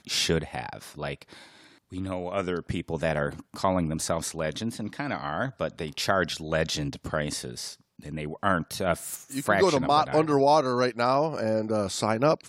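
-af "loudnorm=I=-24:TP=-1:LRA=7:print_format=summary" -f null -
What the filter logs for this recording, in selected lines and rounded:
Input Integrated:    -26.3 LUFS
Input True Peak:      -7.8 dBTP
Input LRA:             6.9 LU
Input Threshold:     -36.7 LUFS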